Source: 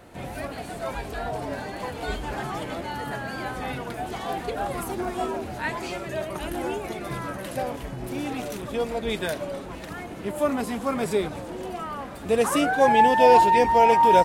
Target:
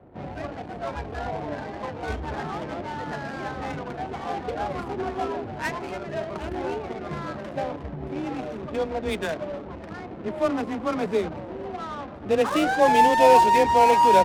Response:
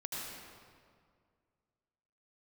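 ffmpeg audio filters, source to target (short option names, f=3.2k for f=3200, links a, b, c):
-af "afreqshift=18,adynamicsmooth=sensitivity=5:basefreq=510"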